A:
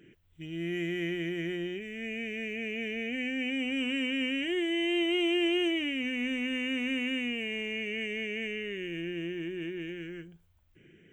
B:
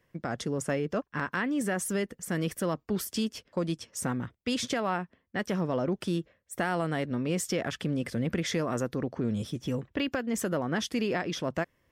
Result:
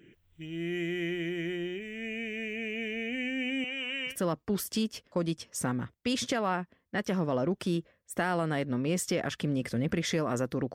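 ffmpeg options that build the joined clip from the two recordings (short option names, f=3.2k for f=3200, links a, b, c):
-filter_complex "[0:a]asettb=1/sr,asplit=3[a][b][c];[a]atrim=end=3.644[d];[b]atrim=start=3.64:end=4.16,asetpts=PTS-STARTPTS,afade=t=in:d=0.004:c=qsin,afade=t=out:st=0.516:d=0.004:c=qsin,highpass=570,lowpass=5.7k[e];[c]atrim=start=4.156[f];[d][e]acrossfade=d=0.004:c1=hsin:c2=qsin[g];[g][f]acrossfade=d=0.004:c1=qsin:c2=hsin,apad=whole_dur=10.74,atrim=end=10.74,atrim=end=4.16,asetpts=PTS-STARTPTS[h];[1:a]atrim=start=2.47:end=9.15,asetpts=PTS-STARTPTS[i];[h][i]acrossfade=d=0.1:c1=tri:c2=tri"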